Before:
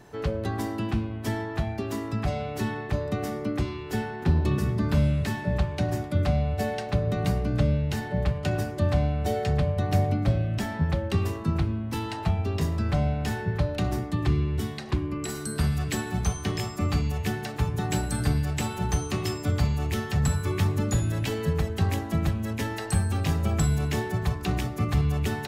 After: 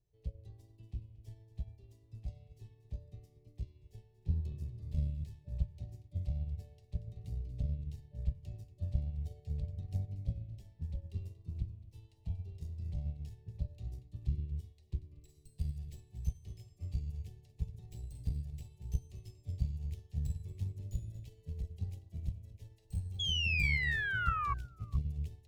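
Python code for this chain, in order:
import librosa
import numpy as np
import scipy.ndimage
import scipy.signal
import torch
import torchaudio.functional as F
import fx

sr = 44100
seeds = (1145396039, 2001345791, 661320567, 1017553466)

y = fx.tracing_dist(x, sr, depth_ms=0.067)
y = fx.tone_stack(y, sr, knobs='10-0-1')
y = fx.fixed_phaser(y, sr, hz=590.0, stages=4)
y = y + 10.0 ** (-12.5 / 20.0) * np.pad(y, (int(234 * sr / 1000.0), 0))[:len(y)]
y = fx.spec_paint(y, sr, seeds[0], shape='fall', start_s=23.19, length_s=1.35, low_hz=1100.0, high_hz=3400.0, level_db=-34.0)
y = fx.high_shelf(y, sr, hz=9800.0, db=-3.5)
y = y + 10.0 ** (-23.0 / 20.0) * np.pad(y, (int(433 * sr / 1000.0), 0))[:len(y)]
y = fx.cheby_harmonics(y, sr, harmonics=(2,), levels_db=(-7,), full_scale_db=-20.5)
y = fx.upward_expand(y, sr, threshold_db=-53.0, expansion=1.5)
y = y * 10.0 ** (1.5 / 20.0)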